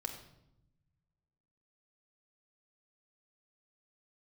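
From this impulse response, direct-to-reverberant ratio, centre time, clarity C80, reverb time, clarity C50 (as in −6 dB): 2.5 dB, 21 ms, 9.5 dB, 0.80 s, 7.5 dB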